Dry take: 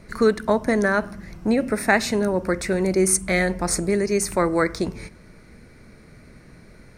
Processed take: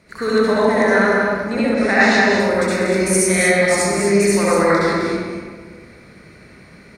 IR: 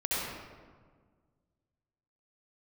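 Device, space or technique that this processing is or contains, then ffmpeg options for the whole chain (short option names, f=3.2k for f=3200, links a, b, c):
stadium PA: -filter_complex "[0:a]highpass=f=150:p=1,equalizer=f=3.1k:t=o:w=2.6:g=5,aecho=1:1:195.3|236.2:0.447|0.355[a];[1:a]atrim=start_sample=2205[b];[a][b]afir=irnorm=-1:irlink=0,asettb=1/sr,asplit=3[c][d][e];[c]atrim=end=1.744[f];[d]atrim=start=1.74:end=2.4,asetpts=PTS-STARTPTS,afade=t=in:d=0.004:c=qsin,afade=t=out:st=0.656:d=0.004:c=qsin,lowpass=f=7k:w=0.5412,lowpass=f=7k:w=1.3066[g];[e]atrim=start=2.396[h];[f][g]acrossfade=d=0.004:c1=hsin:c2=qsin[i];[i][h]acrossfade=d=0.004:c1=qsin:c2=hsin,volume=-4.5dB"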